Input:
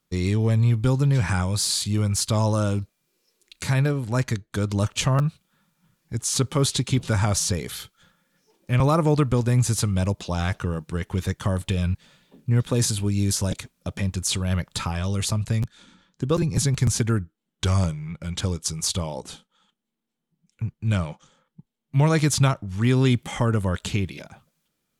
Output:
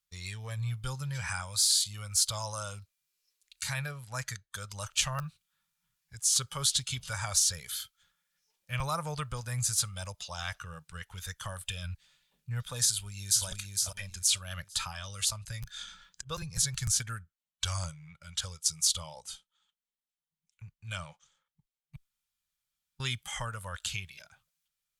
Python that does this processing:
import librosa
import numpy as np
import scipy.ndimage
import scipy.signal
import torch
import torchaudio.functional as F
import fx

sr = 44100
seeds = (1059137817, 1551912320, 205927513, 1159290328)

y = fx.echo_throw(x, sr, start_s=12.85, length_s=0.61, ms=460, feedback_pct=30, wet_db=-3.0)
y = fx.over_compress(y, sr, threshold_db=-39.0, ratio=-1.0, at=(15.64, 16.26), fade=0.02)
y = fx.edit(y, sr, fx.room_tone_fill(start_s=21.96, length_s=1.04), tone=tone)
y = fx.tone_stack(y, sr, knobs='10-0-10')
y = fx.noise_reduce_blind(y, sr, reduce_db=7)